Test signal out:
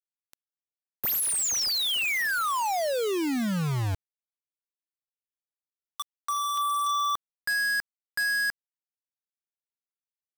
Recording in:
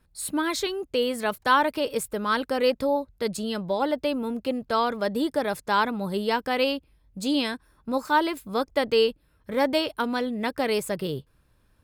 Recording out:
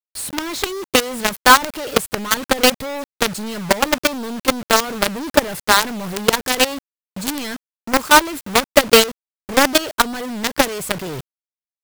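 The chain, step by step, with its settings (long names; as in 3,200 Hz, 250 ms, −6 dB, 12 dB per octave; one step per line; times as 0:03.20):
transient designer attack +8 dB, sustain +3 dB
log-companded quantiser 2 bits
level −1 dB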